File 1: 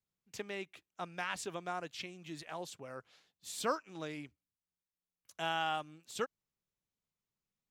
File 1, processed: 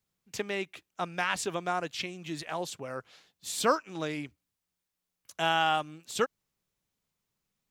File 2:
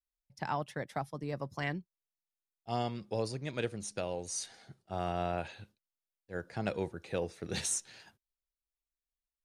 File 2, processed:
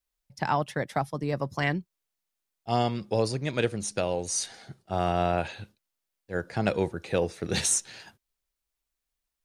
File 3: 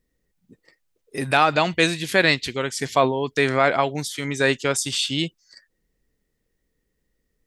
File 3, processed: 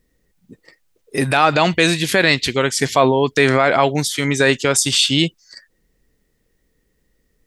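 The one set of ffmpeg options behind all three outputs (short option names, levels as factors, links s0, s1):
-af "alimiter=level_in=2.99:limit=0.891:release=50:level=0:latency=1,volume=0.891"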